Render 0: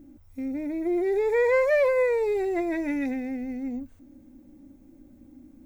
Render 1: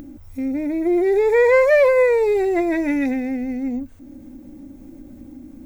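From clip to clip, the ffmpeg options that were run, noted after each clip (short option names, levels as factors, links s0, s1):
-af "acompressor=mode=upward:threshold=0.01:ratio=2.5,volume=2.37"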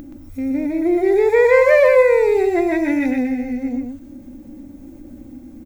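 -af "aecho=1:1:124:0.562,volume=1.12"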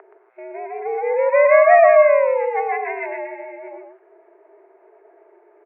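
-af "highpass=f=470:t=q:w=0.5412,highpass=f=470:t=q:w=1.307,lowpass=f=2000:t=q:w=0.5176,lowpass=f=2000:t=q:w=0.7071,lowpass=f=2000:t=q:w=1.932,afreqshift=100,volume=1.26"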